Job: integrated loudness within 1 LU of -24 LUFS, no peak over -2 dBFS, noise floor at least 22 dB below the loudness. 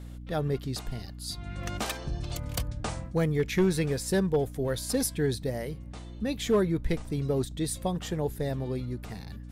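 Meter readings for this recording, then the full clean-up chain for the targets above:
clipped samples 0.3%; clipping level -17.5 dBFS; hum 60 Hz; highest harmonic 300 Hz; hum level -40 dBFS; loudness -30.5 LUFS; peak level -17.5 dBFS; loudness target -24.0 LUFS
-> clip repair -17.5 dBFS; hum notches 60/120/180/240/300 Hz; trim +6.5 dB

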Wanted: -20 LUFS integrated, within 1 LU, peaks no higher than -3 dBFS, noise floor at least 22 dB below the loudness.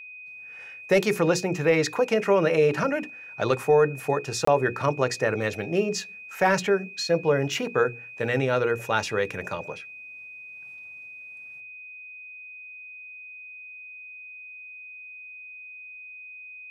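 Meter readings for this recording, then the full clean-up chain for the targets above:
dropouts 1; longest dropout 24 ms; steady tone 2.5 kHz; tone level -40 dBFS; loudness -24.5 LUFS; peak level -10.0 dBFS; loudness target -20.0 LUFS
-> interpolate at 4.45 s, 24 ms; band-stop 2.5 kHz, Q 30; trim +4.5 dB

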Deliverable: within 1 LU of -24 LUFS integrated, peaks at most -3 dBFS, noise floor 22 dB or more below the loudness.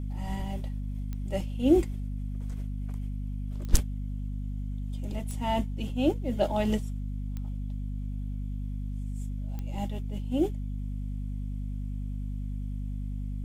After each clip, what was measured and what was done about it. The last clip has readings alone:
clicks found 5; hum 50 Hz; highest harmonic 250 Hz; hum level -31 dBFS; loudness -33.0 LUFS; peak level -5.5 dBFS; loudness target -24.0 LUFS
-> de-click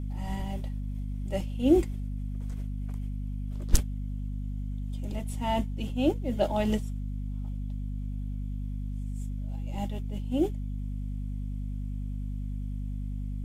clicks found 0; hum 50 Hz; highest harmonic 250 Hz; hum level -31 dBFS
-> hum notches 50/100/150/200/250 Hz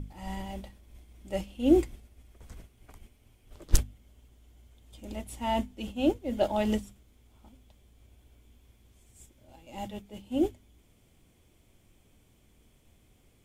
hum not found; loudness -31.0 LUFS; peak level -6.5 dBFS; loudness target -24.0 LUFS
-> trim +7 dB; peak limiter -3 dBFS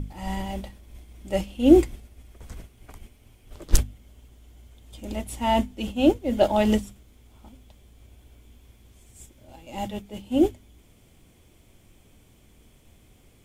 loudness -24.0 LUFS; peak level -3.0 dBFS; noise floor -57 dBFS

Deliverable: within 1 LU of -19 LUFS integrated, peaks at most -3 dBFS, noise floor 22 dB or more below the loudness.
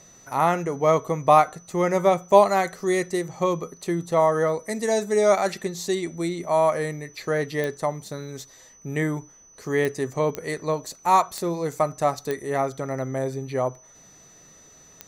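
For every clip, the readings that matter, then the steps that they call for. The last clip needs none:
clicks found 6; steady tone 6 kHz; tone level -50 dBFS; loudness -23.5 LUFS; peak level -2.5 dBFS; loudness target -19.0 LUFS
-> de-click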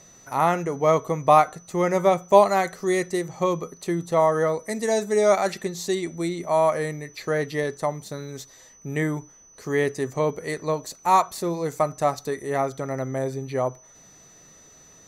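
clicks found 0; steady tone 6 kHz; tone level -50 dBFS
-> band-stop 6 kHz, Q 30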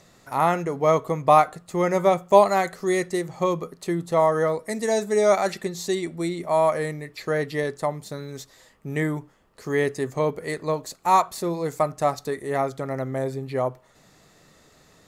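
steady tone not found; loudness -23.5 LUFS; peak level -2.5 dBFS; loudness target -19.0 LUFS
-> trim +4.5 dB; peak limiter -3 dBFS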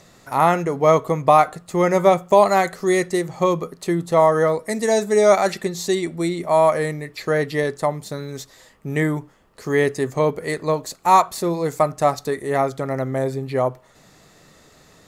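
loudness -19.5 LUFS; peak level -3.0 dBFS; noise floor -52 dBFS

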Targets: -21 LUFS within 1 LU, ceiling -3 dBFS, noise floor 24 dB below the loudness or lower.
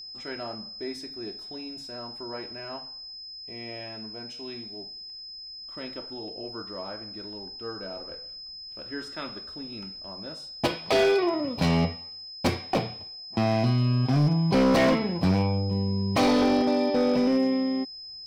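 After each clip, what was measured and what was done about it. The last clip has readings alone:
clipped samples 1.2%; clipping level -17.0 dBFS; steady tone 5.1 kHz; tone level -39 dBFS; loudness -27.5 LUFS; peak level -17.0 dBFS; loudness target -21.0 LUFS
-> clip repair -17 dBFS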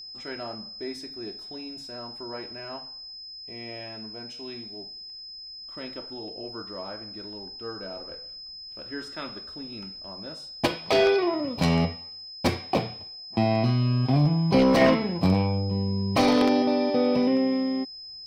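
clipped samples 0.0%; steady tone 5.1 kHz; tone level -39 dBFS
-> band-stop 5.1 kHz, Q 30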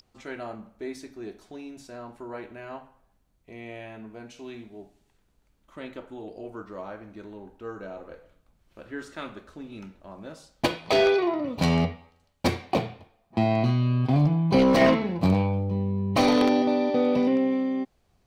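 steady tone not found; loudness -24.0 LUFS; peak level -8.0 dBFS; loudness target -21.0 LUFS
-> trim +3 dB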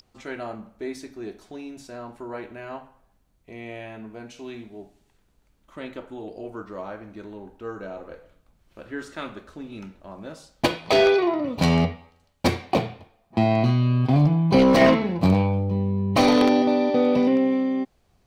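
loudness -21.0 LUFS; peak level -5.0 dBFS; noise floor -65 dBFS

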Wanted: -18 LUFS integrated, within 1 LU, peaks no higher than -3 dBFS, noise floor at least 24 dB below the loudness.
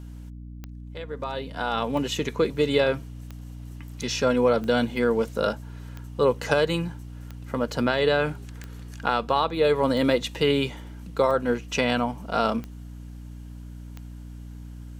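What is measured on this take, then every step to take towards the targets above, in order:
clicks found 11; hum 60 Hz; highest harmonic 300 Hz; hum level -37 dBFS; loudness -25.0 LUFS; peak level -7.0 dBFS; loudness target -18.0 LUFS
-> de-click; de-hum 60 Hz, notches 5; trim +7 dB; peak limiter -3 dBFS

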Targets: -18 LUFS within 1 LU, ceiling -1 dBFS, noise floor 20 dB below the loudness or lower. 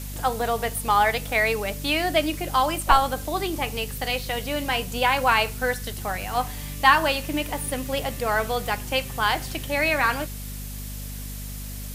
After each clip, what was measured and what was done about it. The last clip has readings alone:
hum 50 Hz; highest harmonic 250 Hz; hum level -33 dBFS; noise floor -34 dBFS; noise floor target -44 dBFS; loudness -24.0 LUFS; peak level -2.5 dBFS; loudness target -18.0 LUFS
-> hum notches 50/100/150/200/250 Hz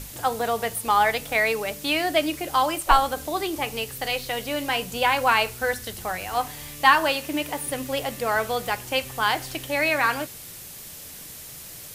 hum not found; noise floor -41 dBFS; noise floor target -44 dBFS
-> noise print and reduce 6 dB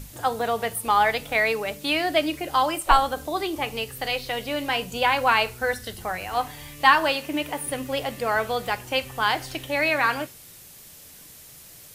noise floor -47 dBFS; loudness -24.0 LUFS; peak level -2.5 dBFS; loudness target -18.0 LUFS
-> trim +6 dB; peak limiter -1 dBFS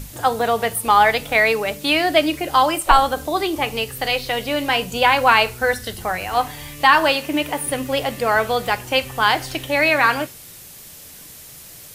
loudness -18.5 LUFS; peak level -1.0 dBFS; noise floor -41 dBFS

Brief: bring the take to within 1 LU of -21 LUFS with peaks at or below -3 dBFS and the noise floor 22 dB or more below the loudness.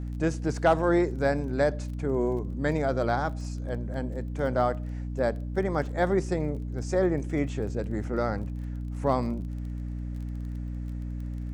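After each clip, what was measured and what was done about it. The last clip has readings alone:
tick rate 22 per s; hum 60 Hz; highest harmonic 300 Hz; hum level -31 dBFS; loudness -29.0 LUFS; peak level -11.0 dBFS; loudness target -21.0 LUFS
-> de-click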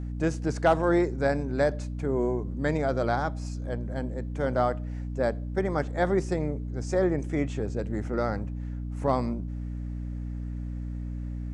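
tick rate 0 per s; hum 60 Hz; highest harmonic 300 Hz; hum level -31 dBFS
-> de-hum 60 Hz, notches 5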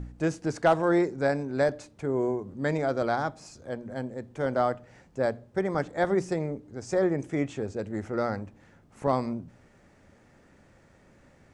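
hum not found; loudness -29.0 LUFS; peak level -12.0 dBFS; loudness target -21.0 LUFS
-> trim +8 dB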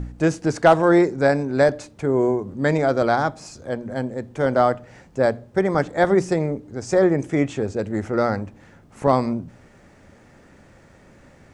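loudness -21.0 LUFS; peak level -4.0 dBFS; noise floor -51 dBFS

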